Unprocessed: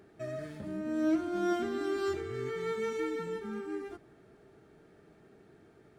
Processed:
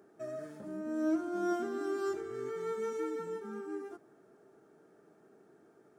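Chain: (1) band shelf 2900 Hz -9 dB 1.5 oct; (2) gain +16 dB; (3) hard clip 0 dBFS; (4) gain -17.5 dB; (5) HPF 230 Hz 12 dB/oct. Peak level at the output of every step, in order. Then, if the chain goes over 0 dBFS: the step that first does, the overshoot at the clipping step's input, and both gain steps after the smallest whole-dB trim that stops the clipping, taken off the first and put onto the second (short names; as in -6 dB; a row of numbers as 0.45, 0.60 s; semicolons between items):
-20.0, -4.0, -4.0, -21.5, -22.5 dBFS; no overload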